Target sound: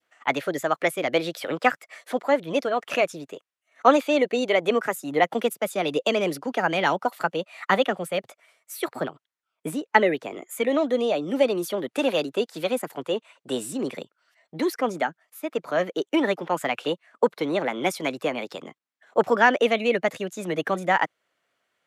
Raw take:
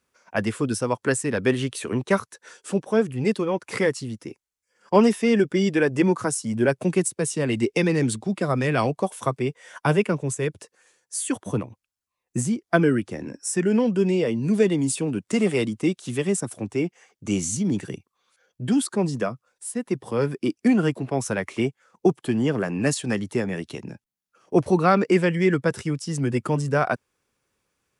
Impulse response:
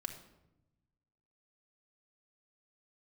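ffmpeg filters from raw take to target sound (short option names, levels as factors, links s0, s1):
-af "bandpass=f=1100:t=q:w=0.57:csg=0,adynamicequalizer=threshold=0.01:dfrequency=1100:dqfactor=0.8:tfrequency=1100:tqfactor=0.8:attack=5:release=100:ratio=0.375:range=2:mode=cutabove:tftype=bell,asetrate=56448,aresample=44100,volume=1.68"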